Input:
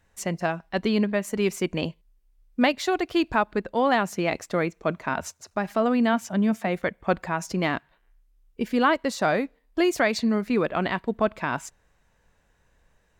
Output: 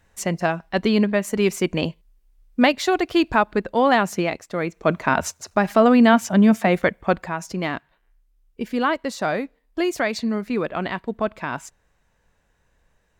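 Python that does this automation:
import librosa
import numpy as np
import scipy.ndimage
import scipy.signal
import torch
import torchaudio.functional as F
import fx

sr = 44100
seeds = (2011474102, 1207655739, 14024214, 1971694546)

y = fx.gain(x, sr, db=fx.line((4.2, 4.5), (4.42, -4.5), (4.95, 8.0), (6.81, 8.0), (7.37, -0.5)))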